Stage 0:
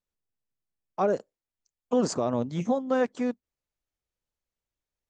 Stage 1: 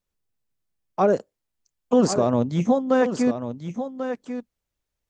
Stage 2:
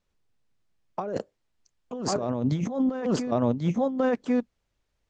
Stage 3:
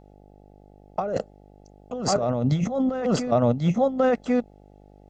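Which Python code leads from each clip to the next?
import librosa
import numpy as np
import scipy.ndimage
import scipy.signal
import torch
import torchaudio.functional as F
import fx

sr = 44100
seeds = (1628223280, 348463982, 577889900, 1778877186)

y1 = fx.low_shelf(x, sr, hz=230.0, db=4.0)
y1 = y1 + 10.0 ** (-9.5 / 20.0) * np.pad(y1, (int(1091 * sr / 1000.0), 0))[:len(y1)]
y1 = F.gain(torch.from_numpy(y1), 5.0).numpy()
y2 = fx.over_compress(y1, sr, threshold_db=-28.0, ratio=-1.0)
y2 = fx.air_absorb(y2, sr, metres=74.0)
y2 = F.gain(torch.from_numpy(y2), 1.5).numpy()
y3 = y2 + 0.44 * np.pad(y2, (int(1.5 * sr / 1000.0), 0))[:len(y2)]
y3 = fx.dmg_buzz(y3, sr, base_hz=50.0, harmonics=17, level_db=-55.0, tilt_db=-3, odd_only=False)
y3 = F.gain(torch.from_numpy(y3), 3.5).numpy()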